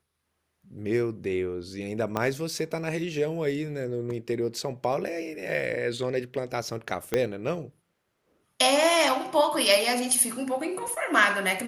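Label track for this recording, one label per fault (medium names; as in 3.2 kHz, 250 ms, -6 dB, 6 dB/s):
2.170000	2.170000	pop -13 dBFS
7.140000	7.140000	pop -11 dBFS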